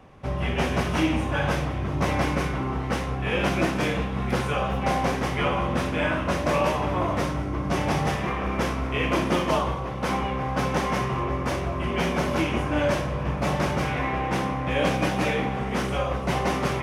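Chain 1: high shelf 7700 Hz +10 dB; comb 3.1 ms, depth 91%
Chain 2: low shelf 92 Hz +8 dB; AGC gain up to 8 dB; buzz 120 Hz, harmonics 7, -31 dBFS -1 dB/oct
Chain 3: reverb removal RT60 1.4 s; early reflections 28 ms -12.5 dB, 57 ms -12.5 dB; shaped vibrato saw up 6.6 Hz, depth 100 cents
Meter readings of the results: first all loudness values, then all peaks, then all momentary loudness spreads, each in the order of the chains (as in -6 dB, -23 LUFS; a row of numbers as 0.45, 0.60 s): -23.0, -17.5, -28.0 LUFS; -6.5, -2.0, -11.5 dBFS; 5, 3, 5 LU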